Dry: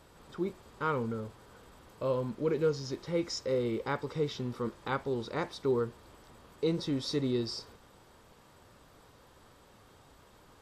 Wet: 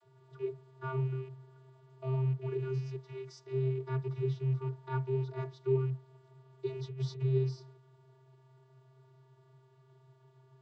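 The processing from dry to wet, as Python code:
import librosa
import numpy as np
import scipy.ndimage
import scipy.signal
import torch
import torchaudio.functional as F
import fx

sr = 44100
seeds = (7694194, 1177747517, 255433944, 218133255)

y = fx.rattle_buzz(x, sr, strikes_db=-42.0, level_db=-33.0)
y = fx.low_shelf(y, sr, hz=440.0, db=-7.0, at=(2.77, 3.52))
y = fx.over_compress(y, sr, threshold_db=-35.0, ratio=-0.5, at=(6.82, 7.22))
y = fx.vocoder(y, sr, bands=32, carrier='square', carrier_hz=131.0)
y = fx.small_body(y, sr, hz=(900.0, 1500.0), ring_ms=45, db=8, at=(4.59, 5.35))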